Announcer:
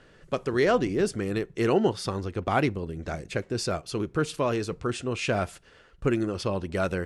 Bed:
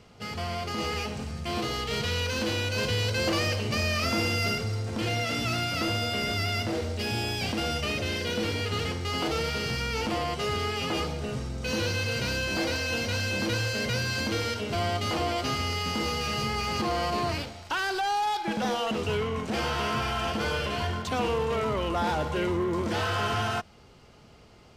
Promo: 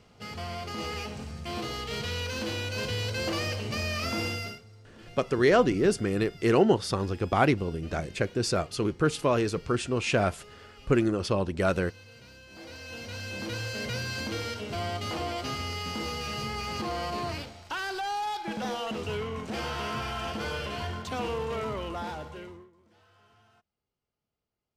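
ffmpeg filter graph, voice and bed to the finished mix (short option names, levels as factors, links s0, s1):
-filter_complex "[0:a]adelay=4850,volume=1.19[s0];[1:a]volume=4.73,afade=t=out:st=4.27:d=0.34:silence=0.125893,afade=t=in:st=12.48:d=1.37:silence=0.133352,afade=t=out:st=21.65:d=1.06:silence=0.0316228[s1];[s0][s1]amix=inputs=2:normalize=0"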